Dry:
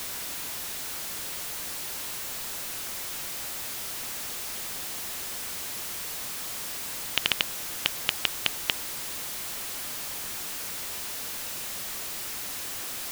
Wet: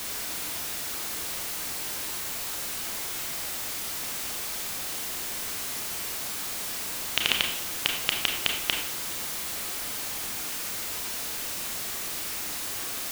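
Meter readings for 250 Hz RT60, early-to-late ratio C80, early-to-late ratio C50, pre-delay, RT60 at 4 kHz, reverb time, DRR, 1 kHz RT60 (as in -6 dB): 0.75 s, 8.0 dB, 5.0 dB, 28 ms, 0.55 s, 0.70 s, 1.5 dB, 0.70 s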